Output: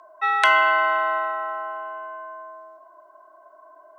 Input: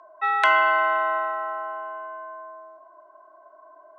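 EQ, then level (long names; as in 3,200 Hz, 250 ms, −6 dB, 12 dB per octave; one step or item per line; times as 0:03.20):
high-shelf EQ 3,500 Hz +10.5 dB
0.0 dB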